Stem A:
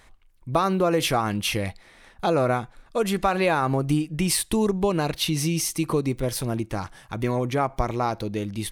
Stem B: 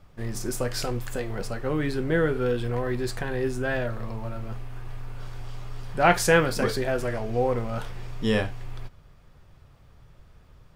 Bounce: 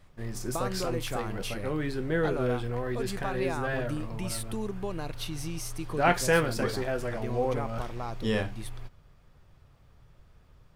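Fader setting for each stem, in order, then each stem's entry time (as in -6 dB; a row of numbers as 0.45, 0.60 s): -12.5, -4.5 dB; 0.00, 0.00 s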